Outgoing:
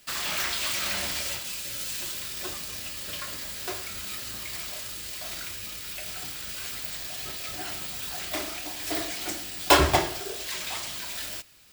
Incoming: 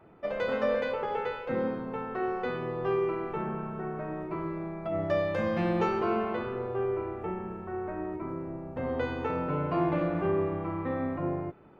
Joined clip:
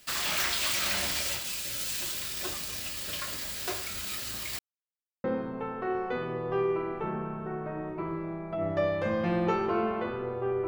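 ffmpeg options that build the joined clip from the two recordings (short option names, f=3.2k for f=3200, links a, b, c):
-filter_complex "[0:a]apad=whole_dur=10.67,atrim=end=10.67,asplit=2[a][b];[a]atrim=end=4.59,asetpts=PTS-STARTPTS,afade=t=out:st=4.586:d=0.004:c=hsin[c];[b]atrim=start=4.59:end=5.24,asetpts=PTS-STARTPTS,volume=0[d];[1:a]atrim=start=1.57:end=7,asetpts=PTS-STARTPTS,afade=t=in:d=0.004:c=hsin[e];[c][d][e]concat=n=3:v=0:a=1"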